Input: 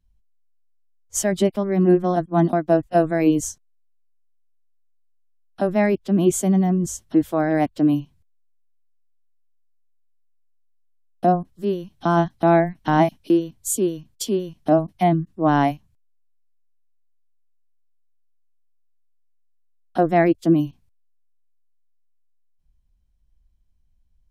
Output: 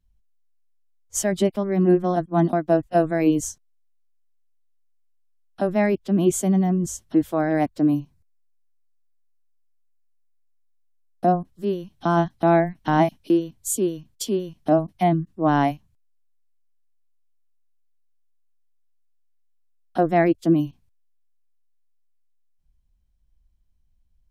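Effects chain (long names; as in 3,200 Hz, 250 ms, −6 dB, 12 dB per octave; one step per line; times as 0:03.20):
0:07.63–0:11.27: parametric band 3,100 Hz −8.5 dB 0.45 octaves
level −1.5 dB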